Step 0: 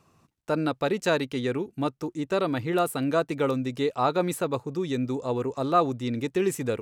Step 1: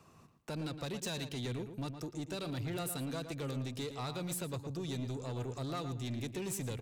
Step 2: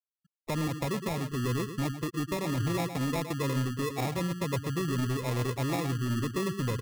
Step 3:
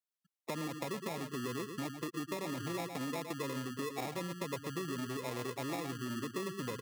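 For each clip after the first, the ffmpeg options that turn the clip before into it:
ffmpeg -i in.wav -filter_complex "[0:a]acrossover=split=150|3000[link_01][link_02][link_03];[link_02]acompressor=threshold=-43dB:ratio=3[link_04];[link_01][link_04][link_03]amix=inputs=3:normalize=0,asoftclip=type=tanh:threshold=-35dB,asplit=2[link_05][link_06];[link_06]adelay=114,lowpass=frequency=3100:poles=1,volume=-8.5dB,asplit=2[link_07][link_08];[link_08]adelay=114,lowpass=frequency=3100:poles=1,volume=0.25,asplit=2[link_09][link_10];[link_10]adelay=114,lowpass=frequency=3100:poles=1,volume=0.25[link_11];[link_07][link_09][link_11]amix=inputs=3:normalize=0[link_12];[link_05][link_12]amix=inputs=2:normalize=0,volume=1dB" out.wav
ffmpeg -i in.wav -af "lowpass=2700,afftfilt=real='re*gte(hypot(re,im),0.0126)':imag='im*gte(hypot(re,im),0.0126)':win_size=1024:overlap=0.75,acrusher=samples=29:mix=1:aa=0.000001,volume=9dB" out.wav
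ffmpeg -i in.wav -af "highpass=220,acompressor=threshold=-35dB:ratio=2.5,volume=-1.5dB" out.wav

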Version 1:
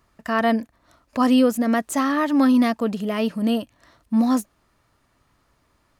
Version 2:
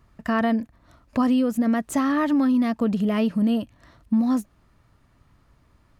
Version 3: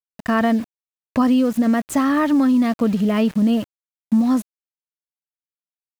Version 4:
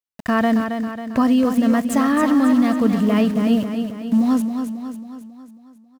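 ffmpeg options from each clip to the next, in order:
ffmpeg -i in.wav -af "bass=frequency=250:gain=9,treble=frequency=4000:gain=-4,acompressor=threshold=-18dB:ratio=6" out.wav
ffmpeg -i in.wav -af "aeval=exprs='val(0)*gte(abs(val(0)),0.0141)':channel_layout=same,volume=4dB" out.wav
ffmpeg -i in.wav -af "aecho=1:1:272|544|816|1088|1360|1632:0.447|0.237|0.125|0.0665|0.0352|0.0187" out.wav

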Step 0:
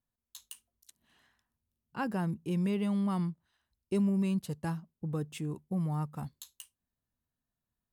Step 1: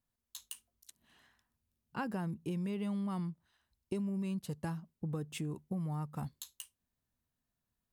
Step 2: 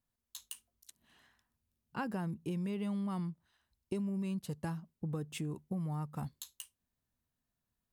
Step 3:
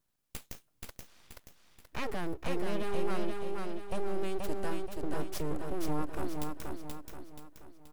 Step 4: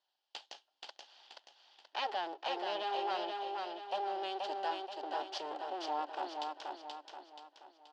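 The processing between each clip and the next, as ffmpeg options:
ffmpeg -i in.wav -af "acompressor=threshold=-36dB:ratio=6,volume=1.5dB" out.wav
ffmpeg -i in.wav -af anull out.wav
ffmpeg -i in.wav -af "alimiter=level_in=8dB:limit=-24dB:level=0:latency=1:release=38,volume=-8dB,aeval=exprs='abs(val(0))':channel_layout=same,aecho=1:1:479|958|1437|1916|2395|2874:0.668|0.294|0.129|0.0569|0.0251|0.011,volume=7.5dB" out.wav
ffmpeg -i in.wav -af "highpass=frequency=460:width=0.5412,highpass=frequency=460:width=1.3066,equalizer=frequency=470:width_type=q:width=4:gain=-7,equalizer=frequency=820:width_type=q:width=4:gain=10,equalizer=frequency=1200:width_type=q:width=4:gain=-6,equalizer=frequency=2200:width_type=q:width=4:gain=-8,equalizer=frequency=3100:width_type=q:width=4:gain=9,equalizer=frequency=4600:width_type=q:width=4:gain=6,lowpass=frequency=5000:width=0.5412,lowpass=frequency=5000:width=1.3066,volume=1dB" out.wav

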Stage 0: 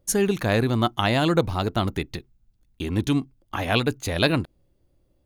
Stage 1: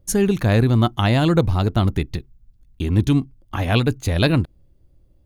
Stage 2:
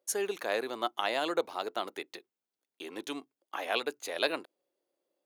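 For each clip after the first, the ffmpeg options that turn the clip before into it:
ffmpeg -i in.wav -af "lowshelf=frequency=190:gain=12" out.wav
ffmpeg -i in.wav -af "highpass=frequency=420:width=0.5412,highpass=frequency=420:width=1.3066,volume=-8dB" out.wav

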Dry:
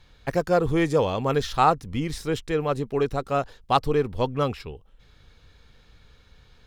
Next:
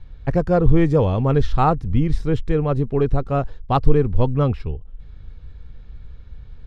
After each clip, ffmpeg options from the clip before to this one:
ffmpeg -i in.wav -af "aemphasis=mode=reproduction:type=riaa" out.wav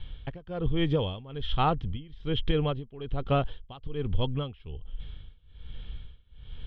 ffmpeg -i in.wav -af "acompressor=threshold=-20dB:ratio=12,lowpass=frequency=3200:width_type=q:width=13,tremolo=f=1.2:d=0.93" out.wav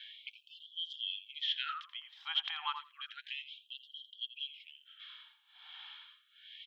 ffmpeg -i in.wav -filter_complex "[0:a]acompressor=threshold=-28dB:ratio=10,asplit=2[link_01][link_02];[link_02]adelay=84,lowpass=frequency=1300:poles=1,volume=-5.5dB,asplit=2[link_03][link_04];[link_04]adelay=84,lowpass=frequency=1300:poles=1,volume=0.18,asplit=2[link_05][link_06];[link_06]adelay=84,lowpass=frequency=1300:poles=1,volume=0.18[link_07];[link_01][link_03][link_05][link_07]amix=inputs=4:normalize=0,afftfilt=real='re*gte(b*sr/1024,720*pow(2900/720,0.5+0.5*sin(2*PI*0.31*pts/sr)))':imag='im*gte(b*sr/1024,720*pow(2900/720,0.5+0.5*sin(2*PI*0.31*pts/sr)))':win_size=1024:overlap=0.75,volume=6.5dB" out.wav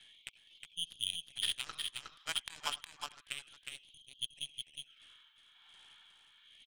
ffmpeg -i in.wav -filter_complex "[0:a]alimiter=level_in=4.5dB:limit=-24dB:level=0:latency=1:release=402,volume=-4.5dB,aeval=exprs='0.0376*(cos(1*acos(clip(val(0)/0.0376,-1,1)))-cos(1*PI/2))+0.015*(cos(3*acos(clip(val(0)/0.0376,-1,1)))-cos(3*PI/2))+0.000841*(cos(4*acos(clip(val(0)/0.0376,-1,1)))-cos(4*PI/2))+0.00335*(cos(5*acos(clip(val(0)/0.0376,-1,1)))-cos(5*PI/2))+0.00237*(cos(7*acos(clip(val(0)/0.0376,-1,1)))-cos(7*PI/2))':channel_layout=same,asplit=2[link_01][link_02];[link_02]aecho=0:1:363:0.596[link_03];[link_01][link_03]amix=inputs=2:normalize=0,volume=7.5dB" out.wav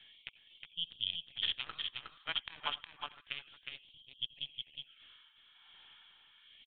ffmpeg -i in.wav -af "aresample=8000,aresample=44100,volume=1dB" out.wav

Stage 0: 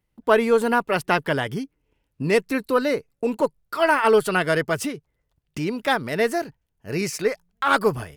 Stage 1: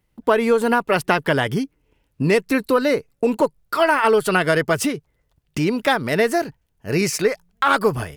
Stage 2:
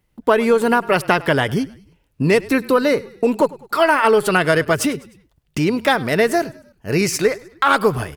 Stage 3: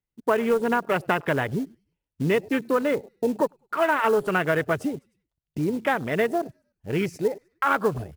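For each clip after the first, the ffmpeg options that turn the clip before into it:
ffmpeg -i in.wav -af "acompressor=threshold=-20dB:ratio=4,volume=6.5dB" out.wav
ffmpeg -i in.wav -filter_complex "[0:a]asplit=4[link_01][link_02][link_03][link_04];[link_02]adelay=102,afreqshift=-33,volume=-21dB[link_05];[link_03]adelay=204,afreqshift=-66,volume=-27.4dB[link_06];[link_04]adelay=306,afreqshift=-99,volume=-33.8dB[link_07];[link_01][link_05][link_06][link_07]amix=inputs=4:normalize=0,volume=2dB" out.wav
ffmpeg -i in.wav -af "afwtdn=0.0708,acrusher=bits=6:mode=log:mix=0:aa=0.000001,volume=-7dB" out.wav

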